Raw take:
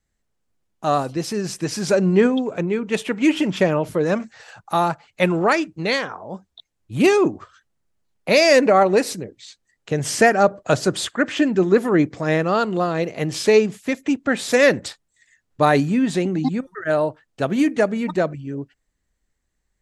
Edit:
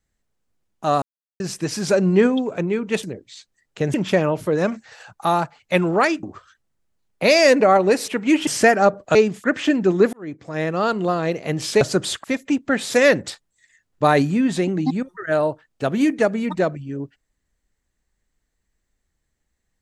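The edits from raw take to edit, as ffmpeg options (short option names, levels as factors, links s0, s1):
-filter_complex "[0:a]asplit=13[s0][s1][s2][s3][s4][s5][s6][s7][s8][s9][s10][s11][s12];[s0]atrim=end=1.02,asetpts=PTS-STARTPTS,afade=t=out:st=1.016:d=0.004:c=hsin[s13];[s1]atrim=start=1.02:end=1.4,asetpts=PTS-STARTPTS,volume=0[s14];[s2]atrim=start=1.4:end=3.032,asetpts=PTS-STARTPTS,afade=t=in:d=0.004:c=hsin[s15];[s3]atrim=start=9.138:end=10.052[s16];[s4]atrim=start=3.418:end=5.712[s17];[s5]atrim=start=7.288:end=9.142[s18];[s6]atrim=start=3.028:end=3.422[s19];[s7]atrim=start=10.048:end=10.732[s20];[s8]atrim=start=13.528:end=13.822[s21];[s9]atrim=start=11.158:end=11.85,asetpts=PTS-STARTPTS,afade=t=out:st=0.688:d=0.004:c=hsin[s22];[s10]atrim=start=11.85:end=13.532,asetpts=PTS-STARTPTS,afade=t=in:d=0.82[s23];[s11]atrim=start=10.728:end=11.162[s24];[s12]atrim=start=13.818[s25];[s13][s14][s15]concat=n=3:v=0:a=1[s26];[s26][s16]acrossfade=d=0.004:c1=hsin:c2=hsin[s27];[s27][s17]acrossfade=d=0.004:c1=hsin:c2=hsin[s28];[s28][s18]acrossfade=d=0.004:c1=hsin:c2=hsin[s29];[s29][s19]acrossfade=d=0.004:c1=hsin:c2=hsin[s30];[s30][s20]acrossfade=d=0.004:c1=hsin:c2=hsin[s31];[s31][s21]acrossfade=d=0.004:c1=hsin:c2=hsin[s32];[s22][s23]concat=n=2:v=0:a=1[s33];[s32][s33]acrossfade=d=0.004:c1=hsin:c2=hsin[s34];[s34][s24]acrossfade=d=0.004:c1=hsin:c2=hsin[s35];[s35][s25]acrossfade=d=0.004:c1=hsin:c2=hsin"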